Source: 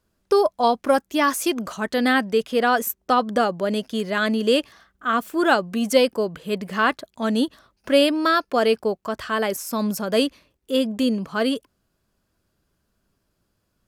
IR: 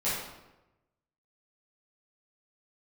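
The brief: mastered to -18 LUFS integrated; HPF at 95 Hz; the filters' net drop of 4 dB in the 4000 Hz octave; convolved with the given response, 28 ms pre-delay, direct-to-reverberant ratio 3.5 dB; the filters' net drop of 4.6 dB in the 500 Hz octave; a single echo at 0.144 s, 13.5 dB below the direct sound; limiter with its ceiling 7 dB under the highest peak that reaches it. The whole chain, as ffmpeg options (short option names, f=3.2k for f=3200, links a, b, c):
-filter_complex "[0:a]highpass=95,equalizer=f=500:t=o:g=-5.5,equalizer=f=4k:t=o:g=-5.5,alimiter=limit=-15dB:level=0:latency=1,aecho=1:1:144:0.211,asplit=2[a][b];[1:a]atrim=start_sample=2205,adelay=28[c];[b][c]afir=irnorm=-1:irlink=0,volume=-12.5dB[d];[a][d]amix=inputs=2:normalize=0,volume=6dB"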